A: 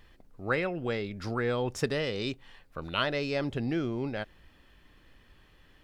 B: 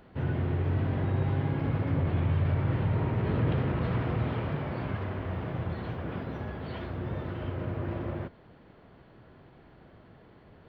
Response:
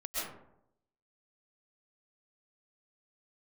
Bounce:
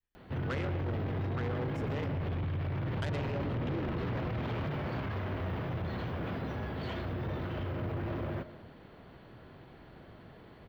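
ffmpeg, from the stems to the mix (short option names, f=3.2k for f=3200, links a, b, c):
-filter_complex "[0:a]agate=range=-33dB:threshold=-47dB:ratio=3:detection=peak,afwtdn=0.0178,volume=-5.5dB,asplit=3[a][b][c];[a]atrim=end=2.09,asetpts=PTS-STARTPTS,afade=t=out:st=2.086:d=0.004:c=hsin[d];[b]atrim=start=2.09:end=3.02,asetpts=PTS-STARTPTS,volume=0[e];[c]atrim=start=3.02,asetpts=PTS-STARTPTS,afade=t=in:d=0.004:c=hsin[f];[d][e][f]concat=n=3:v=0:a=1,asplit=2[g][h];[h]volume=-10.5dB[i];[1:a]highshelf=f=4.1k:g=8.5,alimiter=level_in=1dB:limit=-24dB:level=0:latency=1:release=35,volume=-1dB,adelay=150,volume=1dB,asplit=2[j][k];[k]volume=-19dB[l];[2:a]atrim=start_sample=2205[m];[i][l]amix=inputs=2:normalize=0[n];[n][m]afir=irnorm=-1:irlink=0[o];[g][j][o]amix=inputs=3:normalize=0,asoftclip=type=tanh:threshold=-30dB"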